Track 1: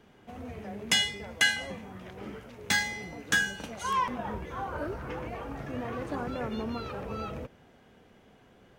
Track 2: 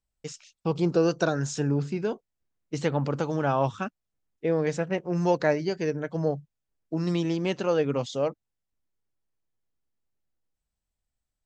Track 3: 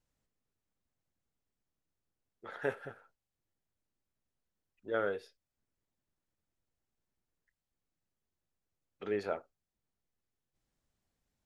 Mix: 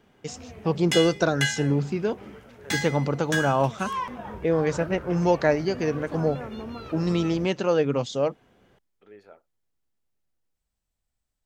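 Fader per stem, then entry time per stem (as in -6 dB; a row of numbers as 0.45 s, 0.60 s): -2.0 dB, +2.5 dB, -14.5 dB; 0.00 s, 0.00 s, 0.00 s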